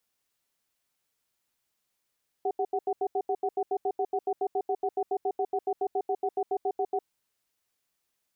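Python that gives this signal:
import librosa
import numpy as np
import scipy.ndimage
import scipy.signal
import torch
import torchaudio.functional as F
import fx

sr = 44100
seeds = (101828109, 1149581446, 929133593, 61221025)

y = fx.cadence(sr, length_s=4.54, low_hz=398.0, high_hz=746.0, on_s=0.06, off_s=0.08, level_db=-27.5)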